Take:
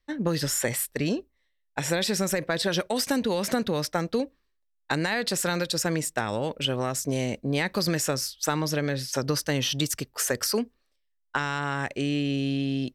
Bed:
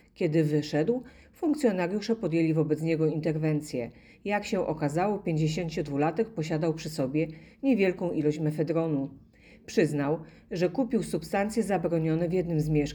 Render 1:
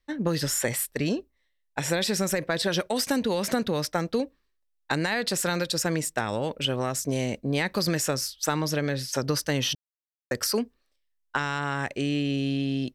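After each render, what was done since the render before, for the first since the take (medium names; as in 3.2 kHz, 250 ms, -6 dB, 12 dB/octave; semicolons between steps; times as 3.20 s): 9.75–10.31 s: mute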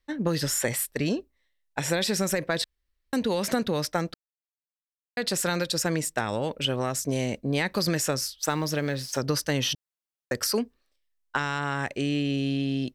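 2.64–3.13 s: room tone; 4.14–5.17 s: mute; 8.41–9.20 s: companding laws mixed up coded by A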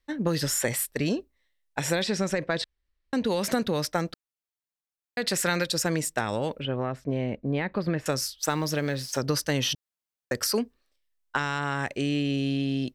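2.02–3.25 s: distance through air 81 m; 5.24–5.67 s: peaking EQ 2 kHz +6 dB; 6.60–8.06 s: distance through air 470 m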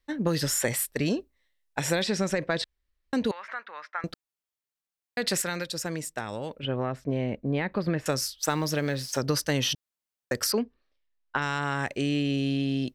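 3.31–4.04 s: Butterworth band-pass 1.5 kHz, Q 1.3; 5.42–6.63 s: gain -6 dB; 10.52–11.42 s: distance through air 170 m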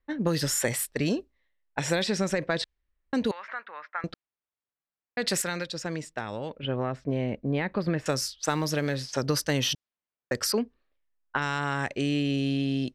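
level-controlled noise filter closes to 1.9 kHz, open at -23 dBFS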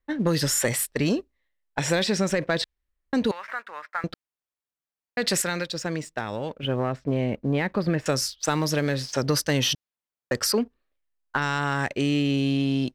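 waveshaping leveller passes 1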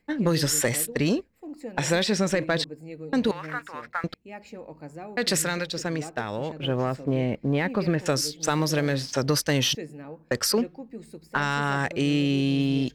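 add bed -13 dB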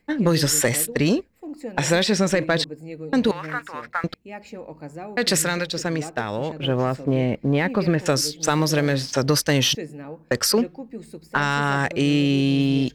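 trim +4 dB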